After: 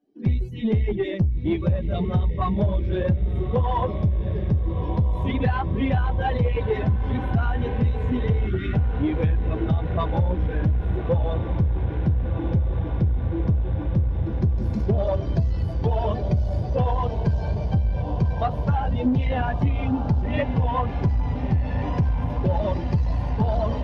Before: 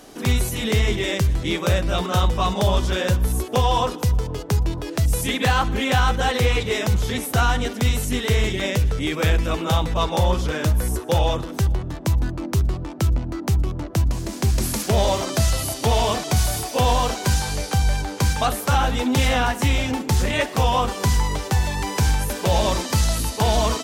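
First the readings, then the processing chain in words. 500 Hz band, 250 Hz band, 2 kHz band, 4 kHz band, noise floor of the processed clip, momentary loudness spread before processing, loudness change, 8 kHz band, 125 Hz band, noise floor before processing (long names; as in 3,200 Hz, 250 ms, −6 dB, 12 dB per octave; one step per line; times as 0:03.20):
−3.5 dB, 0.0 dB, −10.5 dB, −18.0 dB, −29 dBFS, 4 LU, −2.5 dB, below −35 dB, 0.0 dB, −33 dBFS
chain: spectral dynamics exaggerated over time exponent 2
high-pass filter 100 Hz 12 dB per octave
spectral tilt −3 dB per octave
on a send: feedback delay with all-pass diffusion 1,357 ms, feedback 75%, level −11 dB
on the sum: gain on a spectral selection 0:08.47–0:08.74, 420–1,100 Hz −27 dB
in parallel at −3 dB: soft clipping −22.5 dBFS, distortion −7 dB
on the sum: notch filter 1,300 Hz, Q 8.4
harmonic generator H 4 −23 dB, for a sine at −5 dBFS
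high-frequency loss of the air 290 metres
downward compressor 5 to 1, threshold −18 dBFS, peak gain reduction 7.5 dB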